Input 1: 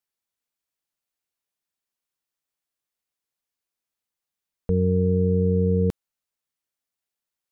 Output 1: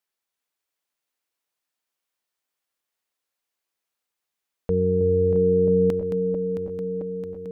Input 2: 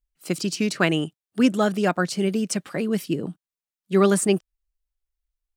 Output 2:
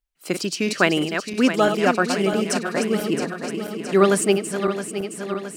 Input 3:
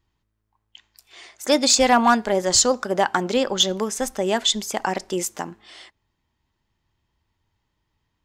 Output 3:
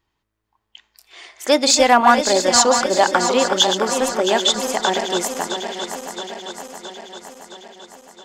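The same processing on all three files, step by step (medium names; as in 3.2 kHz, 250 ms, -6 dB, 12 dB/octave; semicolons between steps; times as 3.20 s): backward echo that repeats 334 ms, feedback 77%, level -8 dB; tone controls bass -9 dB, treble -3 dB; trim +4 dB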